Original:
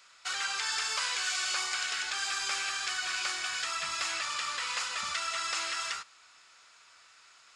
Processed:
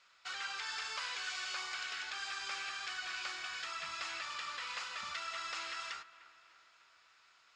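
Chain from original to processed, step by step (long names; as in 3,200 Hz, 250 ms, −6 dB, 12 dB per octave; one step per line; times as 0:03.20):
low-pass filter 4,900 Hz 12 dB per octave
delay with a low-pass on its return 300 ms, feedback 55%, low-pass 2,500 Hz, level −17 dB
level −7 dB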